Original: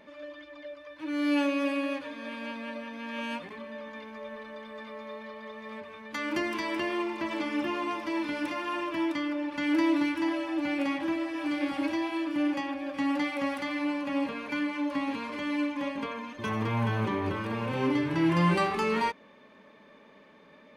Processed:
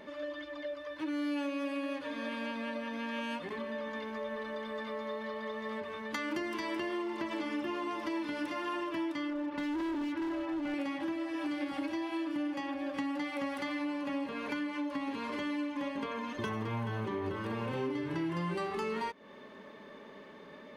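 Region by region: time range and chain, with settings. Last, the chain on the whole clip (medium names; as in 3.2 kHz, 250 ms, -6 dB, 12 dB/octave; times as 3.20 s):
9.30–10.74 s: low-pass 1.8 kHz 6 dB/octave + overload inside the chain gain 29 dB
whole clip: peaking EQ 390 Hz +6 dB 0.24 oct; band-stop 2.4 kHz, Q 13; compression 5:1, threshold -38 dBFS; trim +4 dB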